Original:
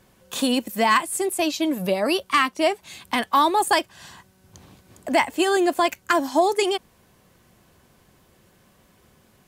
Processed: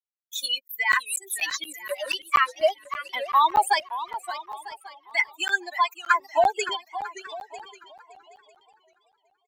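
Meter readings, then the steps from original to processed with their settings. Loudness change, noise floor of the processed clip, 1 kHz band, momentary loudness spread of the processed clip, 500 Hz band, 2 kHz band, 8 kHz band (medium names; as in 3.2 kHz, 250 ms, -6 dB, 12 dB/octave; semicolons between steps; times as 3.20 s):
-3.5 dB, -73 dBFS, -1.0 dB, 17 LU, -6.5 dB, +1.0 dB, -2.5 dB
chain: expander on every frequency bin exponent 3; LFO high-pass saw down 0.25 Hz 410–2700 Hz; in parallel at +0.5 dB: compression, threshold -34 dBFS, peak gain reduction 18.5 dB; on the sum: expander -54 dBFS; high-pass 300 Hz 24 dB/octave; on a send: feedback delay 948 ms, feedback 16%, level -18 dB; on the sum: crackling interface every 0.24 s, samples 512, zero, from 0.68 s; modulated delay 572 ms, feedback 34%, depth 199 cents, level -13 dB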